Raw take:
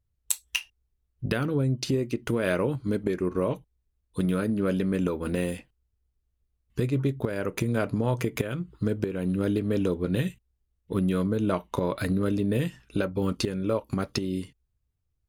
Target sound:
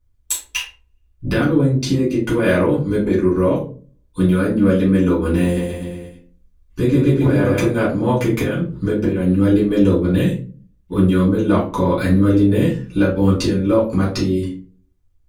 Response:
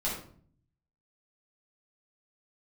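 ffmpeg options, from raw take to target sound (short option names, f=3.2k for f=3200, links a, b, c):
-filter_complex "[0:a]asettb=1/sr,asplit=3[a][b][c];[a]atrim=end=5.424[d];[b]atrim=start=5.42:end=7.67,asetpts=PTS-STARTPTS,afade=t=in:d=0.004:c=qsin,afade=t=out:st=2.246:d=0.004:c=qsin,aecho=1:1:140|266|379.4|481.5|573.3:0.631|0.398|0.251|0.158|0.1,atrim=end_sample=99225[e];[c]atrim=start=7.666[f];[d][e]acrossfade=d=0.004:c1=hsin:c2=qsin[g];[g][f]acrossfade=d=0.004:c1=qsin:c2=hsin[h];[1:a]atrim=start_sample=2205,asetrate=70560,aresample=44100[i];[h][i]afir=irnorm=-1:irlink=0,volume=6dB"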